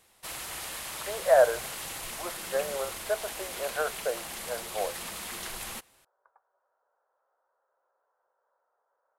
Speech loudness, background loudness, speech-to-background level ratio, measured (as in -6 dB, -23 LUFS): -30.0 LUFS, -36.5 LUFS, 6.5 dB